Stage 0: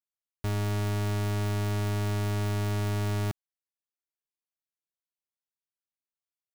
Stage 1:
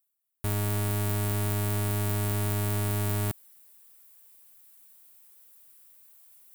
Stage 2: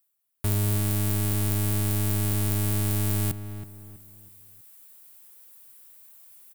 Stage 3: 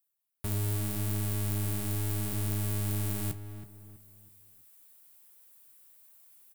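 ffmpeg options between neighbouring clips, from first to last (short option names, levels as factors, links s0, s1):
-af "areverse,acompressor=mode=upward:threshold=0.00398:ratio=2.5,areverse,aexciter=amount=4.6:drive=4.8:freq=8100"
-filter_complex "[0:a]acrossover=split=370|3000[s0][s1][s2];[s1]acompressor=threshold=0.00562:ratio=3[s3];[s0][s3][s2]amix=inputs=3:normalize=0,asplit=2[s4][s5];[s5]adelay=324,lowpass=f=1800:p=1,volume=0.316,asplit=2[s6][s7];[s7]adelay=324,lowpass=f=1800:p=1,volume=0.36,asplit=2[s8][s9];[s9]adelay=324,lowpass=f=1800:p=1,volume=0.36,asplit=2[s10][s11];[s11]adelay=324,lowpass=f=1800:p=1,volume=0.36[s12];[s4][s6][s8][s10][s12]amix=inputs=5:normalize=0,volume=1.68"
-af "flanger=delay=7.7:depth=9.5:regen=-52:speed=0.73:shape=sinusoidal,volume=0.75"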